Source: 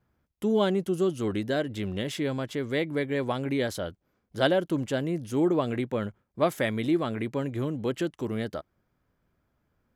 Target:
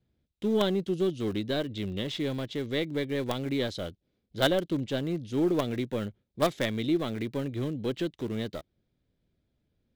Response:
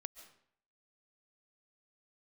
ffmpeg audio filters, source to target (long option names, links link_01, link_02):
-filter_complex "[0:a]lowpass=4900,equalizer=frequency=3800:width_type=o:width=0.42:gain=8,acrossover=split=670|2000[link_01][link_02][link_03];[link_02]acrusher=bits=5:dc=4:mix=0:aa=0.000001[link_04];[link_01][link_04][link_03]amix=inputs=3:normalize=0,volume=-1.5dB"